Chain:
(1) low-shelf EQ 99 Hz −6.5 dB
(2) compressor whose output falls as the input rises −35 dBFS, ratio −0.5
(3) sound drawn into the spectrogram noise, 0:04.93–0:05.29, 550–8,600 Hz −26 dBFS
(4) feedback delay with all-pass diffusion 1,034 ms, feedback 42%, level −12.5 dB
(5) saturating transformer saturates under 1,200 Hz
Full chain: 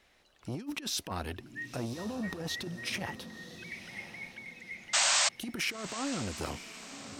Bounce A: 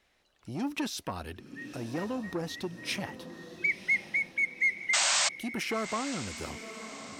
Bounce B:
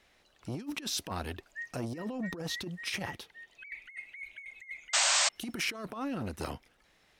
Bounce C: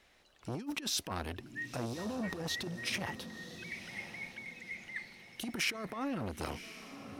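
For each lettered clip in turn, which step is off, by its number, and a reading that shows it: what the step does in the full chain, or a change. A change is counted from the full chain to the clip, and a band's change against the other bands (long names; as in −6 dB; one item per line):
2, change in crest factor −2.5 dB
4, change in momentary loudness spread +1 LU
3, 8 kHz band −8.0 dB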